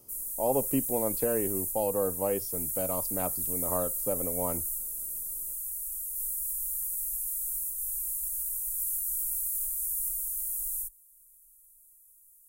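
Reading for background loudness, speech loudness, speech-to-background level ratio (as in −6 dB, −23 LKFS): −30.5 LKFS, −32.5 LKFS, −2.0 dB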